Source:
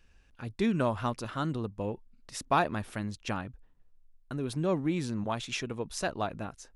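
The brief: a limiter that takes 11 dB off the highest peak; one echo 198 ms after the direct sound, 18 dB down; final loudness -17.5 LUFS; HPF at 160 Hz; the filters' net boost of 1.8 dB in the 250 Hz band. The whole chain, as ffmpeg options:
-af "highpass=160,equalizer=f=250:t=o:g=3.5,alimiter=limit=0.0668:level=0:latency=1,aecho=1:1:198:0.126,volume=7.94"

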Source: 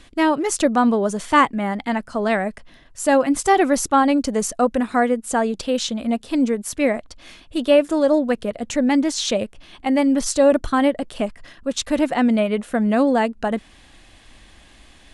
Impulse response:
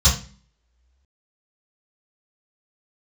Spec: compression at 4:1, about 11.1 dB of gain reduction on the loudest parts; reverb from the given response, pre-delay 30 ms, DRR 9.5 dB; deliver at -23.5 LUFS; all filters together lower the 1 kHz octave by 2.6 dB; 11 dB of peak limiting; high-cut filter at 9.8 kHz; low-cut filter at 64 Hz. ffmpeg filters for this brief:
-filter_complex "[0:a]highpass=64,lowpass=9800,equalizer=f=1000:t=o:g=-3.5,acompressor=threshold=0.0562:ratio=4,alimiter=limit=0.075:level=0:latency=1,asplit=2[s0][s1];[1:a]atrim=start_sample=2205,adelay=30[s2];[s1][s2]afir=irnorm=-1:irlink=0,volume=0.0473[s3];[s0][s3]amix=inputs=2:normalize=0,volume=2.37"

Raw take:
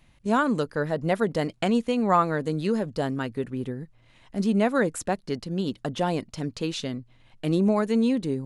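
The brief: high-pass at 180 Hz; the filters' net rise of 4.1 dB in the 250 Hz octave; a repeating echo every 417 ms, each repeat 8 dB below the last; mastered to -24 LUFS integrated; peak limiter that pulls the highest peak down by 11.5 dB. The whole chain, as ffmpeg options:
-af "highpass=180,equalizer=f=250:t=o:g=6.5,alimiter=limit=0.119:level=0:latency=1,aecho=1:1:417|834|1251|1668|2085:0.398|0.159|0.0637|0.0255|0.0102,volume=1.5"

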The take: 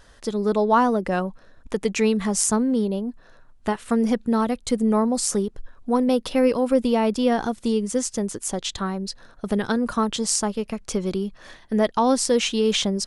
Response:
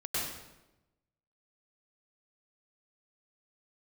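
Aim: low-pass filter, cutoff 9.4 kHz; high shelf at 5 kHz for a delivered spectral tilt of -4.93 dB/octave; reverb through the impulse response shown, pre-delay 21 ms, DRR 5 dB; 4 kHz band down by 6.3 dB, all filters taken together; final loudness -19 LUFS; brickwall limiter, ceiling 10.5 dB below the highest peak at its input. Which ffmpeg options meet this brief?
-filter_complex "[0:a]lowpass=9400,equalizer=f=4000:t=o:g=-7,highshelf=f=5000:g=-3.5,alimiter=limit=0.119:level=0:latency=1,asplit=2[s0][s1];[1:a]atrim=start_sample=2205,adelay=21[s2];[s1][s2]afir=irnorm=-1:irlink=0,volume=0.282[s3];[s0][s3]amix=inputs=2:normalize=0,volume=2.37"

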